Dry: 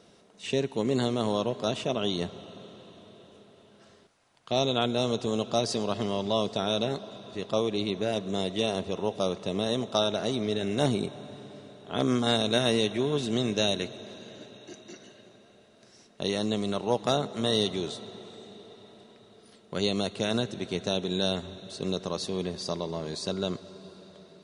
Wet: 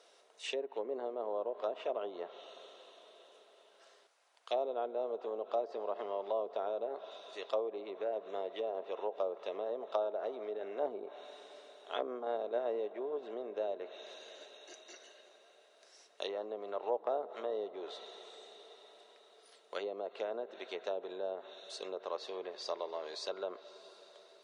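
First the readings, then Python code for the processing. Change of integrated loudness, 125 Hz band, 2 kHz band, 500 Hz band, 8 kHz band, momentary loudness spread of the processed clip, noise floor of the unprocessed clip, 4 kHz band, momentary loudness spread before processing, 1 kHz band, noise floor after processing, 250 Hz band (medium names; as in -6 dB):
-10.5 dB, under -35 dB, -13.0 dB, -7.0 dB, under -15 dB, 17 LU, -58 dBFS, -18.0 dB, 19 LU, -7.0 dB, -65 dBFS, -21.0 dB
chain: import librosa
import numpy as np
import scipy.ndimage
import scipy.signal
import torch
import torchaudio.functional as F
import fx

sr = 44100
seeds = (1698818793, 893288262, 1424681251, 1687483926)

y = fx.env_lowpass_down(x, sr, base_hz=690.0, full_db=-23.5)
y = scipy.signal.sosfilt(scipy.signal.butter(4, 470.0, 'highpass', fs=sr, output='sos'), y)
y = y * librosa.db_to_amplitude(-3.5)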